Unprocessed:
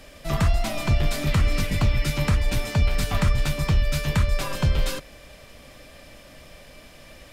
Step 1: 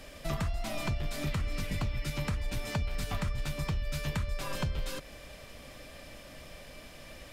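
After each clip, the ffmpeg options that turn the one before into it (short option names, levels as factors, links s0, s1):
-af "acompressor=threshold=0.0398:ratio=6,volume=0.794"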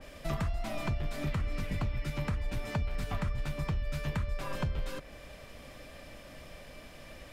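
-af "adynamicequalizer=threshold=0.00158:dfrequency=2800:dqfactor=0.7:tfrequency=2800:tqfactor=0.7:attack=5:release=100:ratio=0.375:range=4:mode=cutabove:tftype=highshelf"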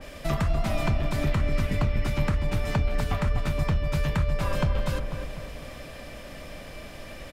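-filter_complex "[0:a]asplit=2[s0][s1];[s1]adelay=247,lowpass=f=1500:p=1,volume=0.562,asplit=2[s2][s3];[s3]adelay=247,lowpass=f=1500:p=1,volume=0.49,asplit=2[s4][s5];[s5]adelay=247,lowpass=f=1500:p=1,volume=0.49,asplit=2[s6][s7];[s7]adelay=247,lowpass=f=1500:p=1,volume=0.49,asplit=2[s8][s9];[s9]adelay=247,lowpass=f=1500:p=1,volume=0.49,asplit=2[s10][s11];[s11]adelay=247,lowpass=f=1500:p=1,volume=0.49[s12];[s0][s2][s4][s6][s8][s10][s12]amix=inputs=7:normalize=0,volume=2.24"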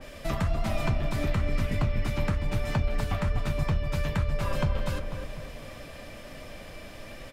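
-af "flanger=delay=7.7:depth=3:regen=-52:speed=1.1:shape=triangular,volume=1.26"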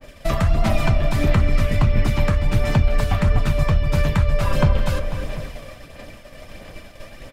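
-af "aphaser=in_gain=1:out_gain=1:delay=1.8:decay=0.29:speed=1.5:type=sinusoidal,agate=range=0.0224:threshold=0.02:ratio=3:detection=peak,volume=2.37"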